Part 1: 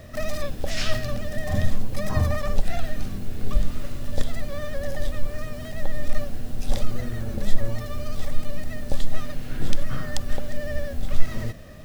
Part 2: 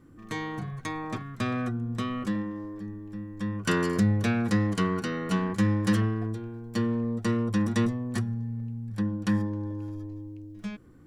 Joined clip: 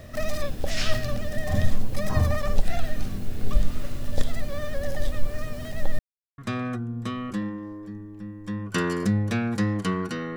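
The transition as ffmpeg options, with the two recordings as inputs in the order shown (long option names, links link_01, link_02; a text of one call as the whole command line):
ffmpeg -i cue0.wav -i cue1.wav -filter_complex "[0:a]apad=whole_dur=10.36,atrim=end=10.36,asplit=2[link_01][link_02];[link_01]atrim=end=5.99,asetpts=PTS-STARTPTS,afade=type=out:start_time=5.986:duration=0.004:curve=hsin[link_03];[link_02]atrim=start=5.99:end=6.38,asetpts=PTS-STARTPTS,volume=0[link_04];[1:a]atrim=start=1.31:end=5.29,asetpts=PTS-STARTPTS,afade=type=in:duration=0.004:curve=hsin[link_05];[link_03][link_04][link_05]concat=n=3:v=0:a=1" out.wav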